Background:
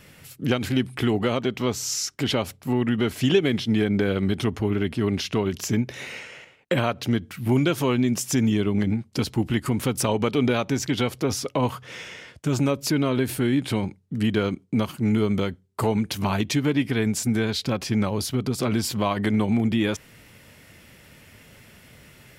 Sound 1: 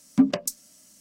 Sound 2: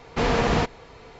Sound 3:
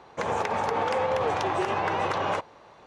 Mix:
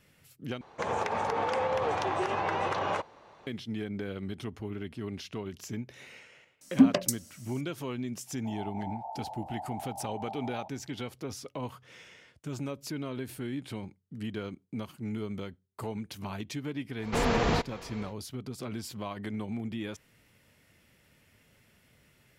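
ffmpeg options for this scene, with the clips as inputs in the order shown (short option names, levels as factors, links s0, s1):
-filter_complex "[3:a]asplit=2[s0][s1];[0:a]volume=0.2[s2];[1:a]bandreject=f=182.9:t=h:w=4,bandreject=f=365.8:t=h:w=4,bandreject=f=548.7:t=h:w=4[s3];[s1]asuperpass=centerf=750:order=8:qfactor=2.7[s4];[2:a]acompressor=mode=upward:threshold=0.0251:ratio=2.5:attack=3.2:release=140:knee=2.83:detection=peak[s5];[s2]asplit=2[s6][s7];[s6]atrim=end=0.614[s8];[s0]atrim=end=2.86,asetpts=PTS-STARTPTS,volume=0.668[s9];[s7]atrim=start=3.466[s10];[s3]atrim=end=1,asetpts=PTS-STARTPTS,volume=0.944,afade=t=in:d=0.004:c=hsin,afade=t=out:st=0.996:d=0.004:c=hsin,adelay=6610[s11];[s4]atrim=end=2.86,asetpts=PTS-STARTPTS,volume=0.335,afade=t=in:d=0.004:c=hsin,afade=t=out:st=2.856:d=0.004:c=hsin,adelay=8270[s12];[s5]atrim=end=1.19,asetpts=PTS-STARTPTS,volume=0.562,afade=t=in:d=0.1,afade=t=out:st=1.09:d=0.1,adelay=16960[s13];[s8][s9]acrossfade=d=0.004:c1=hsin:c2=hsin[s14];[s14][s10]acrossfade=d=0.004:c1=hsin:c2=hsin[s15];[s15][s11][s12][s13]amix=inputs=4:normalize=0"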